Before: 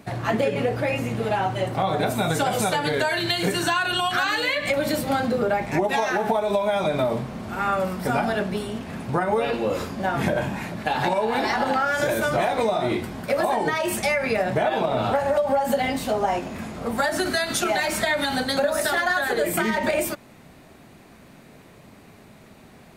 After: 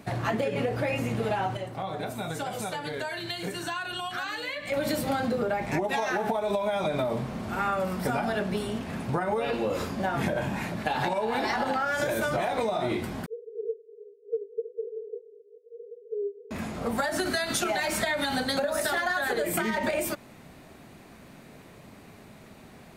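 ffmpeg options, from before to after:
ffmpeg -i in.wav -filter_complex "[0:a]asettb=1/sr,asplit=3[link_01][link_02][link_03];[link_01]atrim=end=13.264[link_04];[link_02]atrim=start=13.26:end=16.51,asetpts=PTS-STARTPTS,afade=type=in:duration=0.004:curve=qsin,afade=type=out:start_time=3.246:duration=0.004:curve=qsin,asuperpass=centerf=440:order=20:qfactor=4.7[link_05];[link_03]atrim=start=16.506[link_06];[link_04][link_05]acrossfade=duration=0.004:curve1=hsin:curve2=qsin[link_07];[link_07][link_06]acrossfade=duration=0.004:curve1=qsin:curve2=hsin,asplit=3[link_08][link_09][link_10];[link_08]atrim=end=1.57,asetpts=PTS-STARTPTS,afade=type=out:start_time=1.37:duration=0.2:curve=log:silence=0.334965[link_11];[link_09]atrim=start=1.57:end=4.72,asetpts=PTS-STARTPTS,volume=-9.5dB[link_12];[link_10]atrim=start=4.72,asetpts=PTS-STARTPTS,afade=type=in:duration=0.2:curve=log:silence=0.334965[link_13];[link_11][link_12][link_13]concat=n=3:v=0:a=1,acompressor=threshold=-23dB:ratio=6,volume=-1dB" out.wav

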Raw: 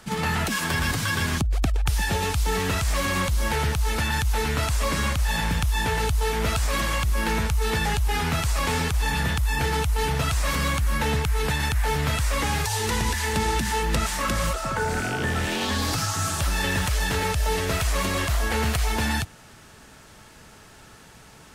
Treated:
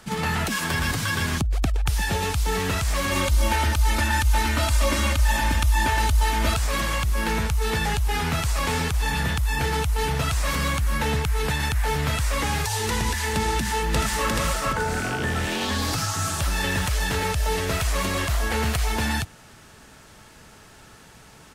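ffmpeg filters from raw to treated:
ffmpeg -i in.wav -filter_complex "[0:a]asettb=1/sr,asplit=3[link_01][link_02][link_03];[link_01]atrim=end=3.114[link_04];[link_02]atrim=start=3.11:end=6.54,asetpts=PTS-STARTPTS,afade=type=in:duration=0.004:curve=qsin,afade=type=out:start_time=3.426:duration=0.004:curve=qsin,aecho=1:1:3.3:0.9,atrim=end_sample=151263[link_05];[link_03]atrim=start=6.536[link_06];[link_04][link_05]acrossfade=duration=0.004:curve1=hsin:curve2=qsin[link_07];[link_07][link_06]acrossfade=duration=0.004:curve1=qsin:curve2=hsin,asplit=2[link_08][link_09];[link_09]afade=type=in:start_time=13.52:duration=0.01,afade=type=out:start_time=14.29:duration=0.01,aecho=0:1:430|860|1290|1720:0.749894|0.224968|0.0674905|0.0202471[link_10];[link_08][link_10]amix=inputs=2:normalize=0" out.wav

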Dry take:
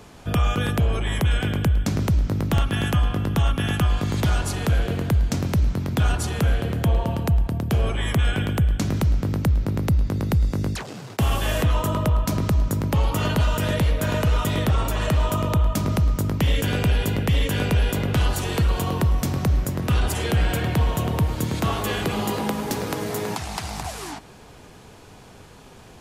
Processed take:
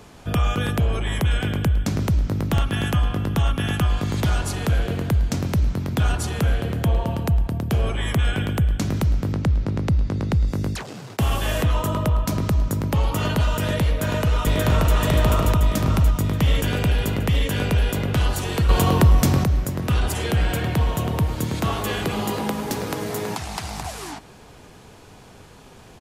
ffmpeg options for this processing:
ffmpeg -i in.wav -filter_complex "[0:a]asettb=1/sr,asplit=3[link_01][link_02][link_03];[link_01]atrim=end=9.334[link_04];[link_02]atrim=start=9.33:end=10.48,asetpts=PTS-STARTPTS,afade=type=in:duration=0.004:curve=qsin,afade=type=out:start_time=1.146:duration=0.004:curve=qsin,lowpass=6800[link_05];[link_03]atrim=start=10.476[link_06];[link_04][link_05]acrossfade=duration=0.004:curve1=hsin:curve2=qsin[link_07];[link_07][link_06]acrossfade=duration=0.004:curve1=qsin:curve2=hsin,asplit=2[link_08][link_09];[link_09]afade=type=in:start_time=13.88:duration=0.01,afade=type=out:start_time=14.94:duration=0.01,aecho=0:1:580|1160|1740|2320|2900|3480|4060|4640:0.944061|0.519233|0.285578|0.157068|0.0863875|0.0475131|0.0261322|0.0143727[link_10];[link_08][link_10]amix=inputs=2:normalize=0,asettb=1/sr,asplit=3[link_11][link_12][link_13];[link_11]atrim=end=18.694[link_14];[link_12]atrim=start=18.69:end=19.44,asetpts=PTS-STARTPTS,afade=type=in:duration=0.004:curve=qsin,afade=type=out:start_time=0.746:duration=0.004:curve=qsin,acontrast=72[link_15];[link_13]atrim=start=19.436[link_16];[link_14][link_15]acrossfade=duration=0.004:curve1=hsin:curve2=qsin[link_17];[link_17][link_16]acrossfade=duration=0.004:curve1=qsin:curve2=hsin" out.wav

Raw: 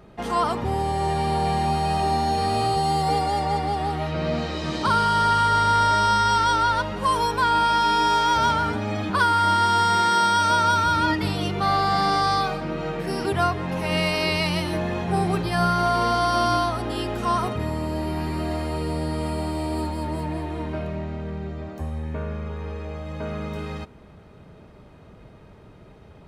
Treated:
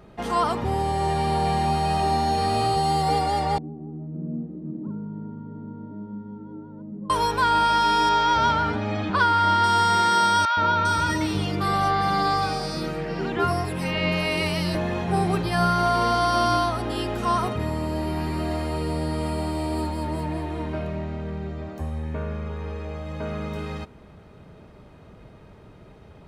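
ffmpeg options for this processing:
ffmpeg -i in.wav -filter_complex "[0:a]asettb=1/sr,asplit=3[link_01][link_02][link_03];[link_01]atrim=end=3.584[link_04];[link_02]atrim=start=3.58:end=7.1,asetpts=PTS-STARTPTS,afade=type=in:duration=0.004:curve=qsin,afade=type=out:start_time=3.516:duration=0.004:curve=qsin,asuperpass=centerf=220:order=4:qfactor=1.5[link_05];[link_03]atrim=start=7.096[link_06];[link_04][link_05]acrossfade=duration=0.004:curve1=hsin:curve2=qsin[link_07];[link_07][link_06]acrossfade=duration=0.004:curve1=qsin:curve2=hsin,asettb=1/sr,asplit=3[link_08][link_09][link_10];[link_08]atrim=end=8.094[link_11];[link_09]atrim=start=8.09:end=9.64,asetpts=PTS-STARTPTS,afade=type=in:duration=0.004:curve=qsin,afade=type=out:start_time=1.546:duration=0.004:curve=qsin,lowpass=5100[link_12];[link_10]atrim=start=9.636[link_13];[link_11][link_12]acrossfade=duration=0.004:curve1=hsin:curve2=qsin[link_14];[link_14][link_13]acrossfade=duration=0.004:curve1=qsin:curve2=hsin,asettb=1/sr,asplit=3[link_15][link_16][link_17];[link_15]atrim=end=10.454[link_18];[link_16]atrim=start=10.45:end=14.75,asetpts=PTS-STARTPTS,afade=type=in:duration=0.004:curve=qsin,afade=type=out:start_time=4.296:duration=0.004:curve=qsin,acrossover=split=850|4100[link_19][link_20][link_21];[link_19]adelay=120[link_22];[link_21]adelay=400[link_23];[link_22][link_20][link_23]amix=inputs=3:normalize=0,atrim=end_sample=189630[link_24];[link_17]atrim=start=14.746[link_25];[link_18][link_24]acrossfade=duration=0.004:curve1=hsin:curve2=qsin[link_26];[link_26][link_25]acrossfade=duration=0.004:curve1=qsin:curve2=hsin" out.wav

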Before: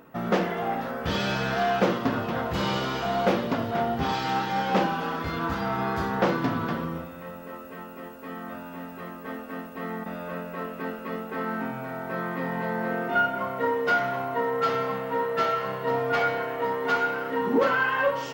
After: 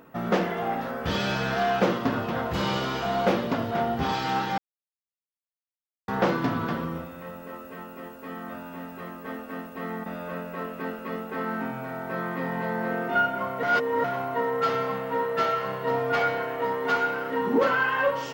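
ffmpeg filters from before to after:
ffmpeg -i in.wav -filter_complex "[0:a]asplit=5[link_01][link_02][link_03][link_04][link_05];[link_01]atrim=end=4.58,asetpts=PTS-STARTPTS,afade=type=out:start_time=4.576:duration=0.004:curve=hsin[link_06];[link_02]atrim=start=4.58:end=6.08,asetpts=PTS-STARTPTS,volume=0[link_07];[link_03]atrim=start=6.08:end=13.632,asetpts=PTS-STARTPTS,afade=type=in:duration=0.004:curve=hsin[link_08];[link_04]atrim=start=13.628:end=14.042,asetpts=PTS-STARTPTS,areverse[link_09];[link_05]atrim=start=14.038[link_10];[link_06][link_07][link_08]concat=n=3:v=0:a=1[link_11];[link_11][link_09]acrossfade=duration=0.004:curve1=hsin:curve2=hsin[link_12];[link_12][link_10]acrossfade=duration=0.004:curve1=hsin:curve2=hsin" out.wav

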